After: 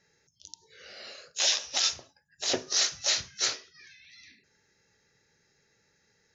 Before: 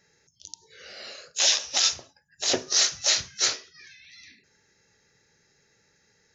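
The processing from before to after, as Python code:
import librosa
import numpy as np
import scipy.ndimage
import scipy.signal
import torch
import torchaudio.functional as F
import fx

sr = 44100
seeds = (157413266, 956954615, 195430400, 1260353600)

y = scipy.signal.sosfilt(scipy.signal.butter(2, 7500.0, 'lowpass', fs=sr, output='sos'), x)
y = F.gain(torch.from_numpy(y), -3.5).numpy()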